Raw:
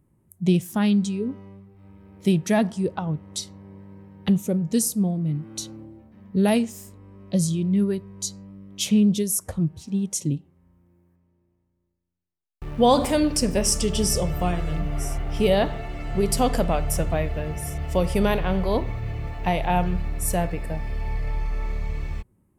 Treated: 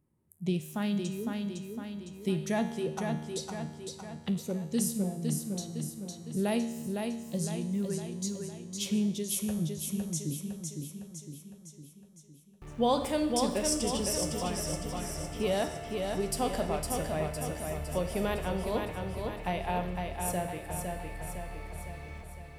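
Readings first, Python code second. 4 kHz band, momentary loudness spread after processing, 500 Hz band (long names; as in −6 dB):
−7.0 dB, 12 LU, −7.5 dB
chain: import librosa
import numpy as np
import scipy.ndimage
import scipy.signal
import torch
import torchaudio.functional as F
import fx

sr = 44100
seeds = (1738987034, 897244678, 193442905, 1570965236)

p1 = fx.low_shelf(x, sr, hz=110.0, db=-6.5)
p2 = fx.comb_fb(p1, sr, f0_hz=77.0, decay_s=1.2, harmonics='all', damping=0.0, mix_pct=70)
y = p2 + fx.echo_feedback(p2, sr, ms=508, feedback_pct=53, wet_db=-4.5, dry=0)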